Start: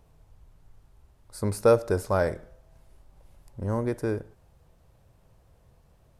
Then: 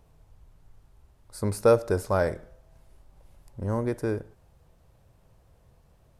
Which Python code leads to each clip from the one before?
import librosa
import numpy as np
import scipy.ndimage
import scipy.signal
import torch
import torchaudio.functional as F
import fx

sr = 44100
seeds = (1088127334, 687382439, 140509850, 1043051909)

y = x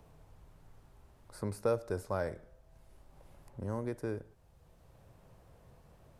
y = fx.band_squash(x, sr, depth_pct=40)
y = y * 10.0 ** (-9.0 / 20.0)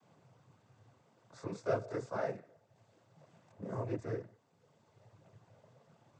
y = fx.chorus_voices(x, sr, voices=2, hz=0.38, base_ms=23, depth_ms=4.8, mix_pct=60)
y = fx.noise_vocoder(y, sr, seeds[0], bands=16)
y = y * 10.0 ** (1.5 / 20.0)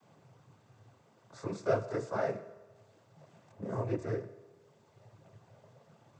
y = fx.rev_fdn(x, sr, rt60_s=1.3, lf_ratio=0.85, hf_ratio=0.95, size_ms=15.0, drr_db=12.5)
y = y * 10.0 ** (3.5 / 20.0)